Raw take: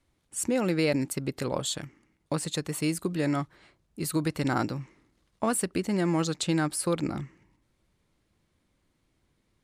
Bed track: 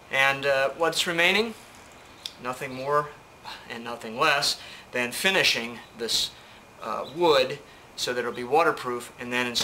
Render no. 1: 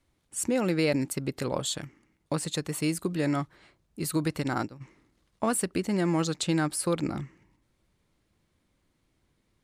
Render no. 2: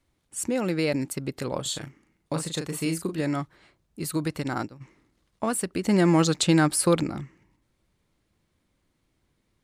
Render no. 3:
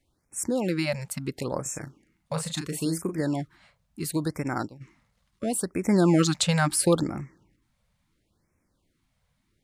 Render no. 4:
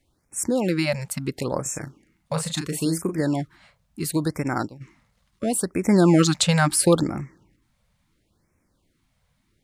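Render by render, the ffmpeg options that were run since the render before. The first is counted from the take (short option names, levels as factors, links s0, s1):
-filter_complex "[0:a]asplit=3[s0][s1][s2];[s0]afade=t=out:st=4.4:d=0.02[s3];[s1]agate=range=0.0224:threshold=0.0631:ratio=3:release=100:detection=peak,afade=t=in:st=4.4:d=0.02,afade=t=out:st=4.8:d=0.02[s4];[s2]afade=t=in:st=4.8:d=0.02[s5];[s3][s4][s5]amix=inputs=3:normalize=0"
-filter_complex "[0:a]asettb=1/sr,asplit=3[s0][s1][s2];[s0]atrim=end=1.624[s3];[s1]atrim=start=1.62:end=3.21,asetpts=PTS-STARTPTS,afade=t=in:d=0.004:c=qsin,afade=t=out:st=1.586:d=0.004:c=qsin,asplit=2[s4][s5];[s5]adelay=37,volume=0.501[s6];[s4][s6]amix=inputs=2:normalize=0,atrim=end_sample=70119[s7];[s2]atrim=start=3.206[s8];[s3][s7]acrossfade=d=0.004:c1=hsin:c2=qsin[s9];[s9][s8]acrossfade=d=0.004:c1=qsin:c2=hsin,asplit=3[s10][s11][s12];[s10]atrim=end=5.852[s13];[s11]atrim=start=5.848:end=7.032,asetpts=PTS-STARTPTS,volume=2.11[s14];[s12]atrim=start=7.028[s15];[s13][s14]acrossfade=d=0.004:c1=hsin:c2=hsin[s16];[s16][s15]acrossfade=d=0.004:c1=hsin:c2=hsin"
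-af "afftfilt=real='re*(1-between(b*sr/1024,300*pow(3800/300,0.5+0.5*sin(2*PI*0.73*pts/sr))/1.41,300*pow(3800/300,0.5+0.5*sin(2*PI*0.73*pts/sr))*1.41))':imag='im*(1-between(b*sr/1024,300*pow(3800/300,0.5+0.5*sin(2*PI*0.73*pts/sr))/1.41,300*pow(3800/300,0.5+0.5*sin(2*PI*0.73*pts/sr))*1.41))':win_size=1024:overlap=0.75"
-af "volume=1.58"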